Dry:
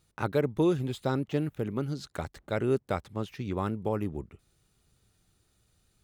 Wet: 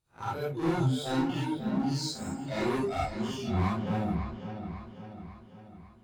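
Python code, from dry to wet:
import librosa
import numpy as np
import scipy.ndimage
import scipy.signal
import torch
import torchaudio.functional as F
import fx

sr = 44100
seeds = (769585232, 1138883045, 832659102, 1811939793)

y = fx.spec_blur(x, sr, span_ms=119.0)
y = fx.hum_notches(y, sr, base_hz=50, count=8)
y = fx.noise_reduce_blind(y, sr, reduce_db=21)
y = fx.highpass(y, sr, hz=110.0, slope=24, at=(0.63, 2.91))
y = fx.leveller(y, sr, passes=1)
y = fx.rider(y, sr, range_db=5, speed_s=0.5)
y = 10.0 ** (-36.5 / 20.0) * np.tanh(y / 10.0 ** (-36.5 / 20.0))
y = fx.echo_wet_lowpass(y, sr, ms=547, feedback_pct=52, hz=3300.0, wet_db=-9)
y = fx.rev_gated(y, sr, seeds[0], gate_ms=90, shape='rising', drr_db=-6.5)
y = F.gain(torch.from_numpy(y), 3.5).numpy()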